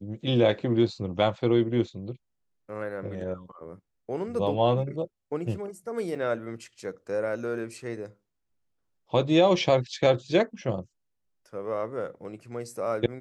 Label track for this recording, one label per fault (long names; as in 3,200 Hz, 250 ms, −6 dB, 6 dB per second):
6.150000	6.150000	drop-out 4.5 ms